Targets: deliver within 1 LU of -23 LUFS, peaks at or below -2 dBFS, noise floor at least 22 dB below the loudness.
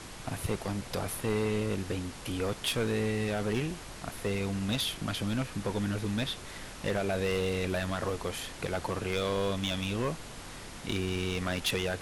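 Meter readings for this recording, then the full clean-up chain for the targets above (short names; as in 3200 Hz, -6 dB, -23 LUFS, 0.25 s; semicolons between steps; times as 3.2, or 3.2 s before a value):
clipped 1.7%; flat tops at -23.5 dBFS; noise floor -45 dBFS; noise floor target -55 dBFS; loudness -32.5 LUFS; peak -23.5 dBFS; loudness target -23.0 LUFS
-> clip repair -23.5 dBFS; noise print and reduce 10 dB; gain +9.5 dB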